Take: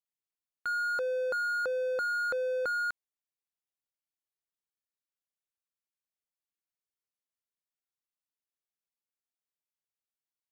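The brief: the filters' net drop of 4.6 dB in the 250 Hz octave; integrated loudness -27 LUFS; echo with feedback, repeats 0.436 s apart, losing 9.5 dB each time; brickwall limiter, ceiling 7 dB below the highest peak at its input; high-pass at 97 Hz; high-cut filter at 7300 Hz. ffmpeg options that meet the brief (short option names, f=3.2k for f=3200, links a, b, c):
-af "highpass=97,lowpass=7.3k,equalizer=f=250:t=o:g=-7,alimiter=level_in=8.5dB:limit=-24dB:level=0:latency=1,volume=-8.5dB,aecho=1:1:436|872|1308|1744:0.335|0.111|0.0365|0.012,volume=9.5dB"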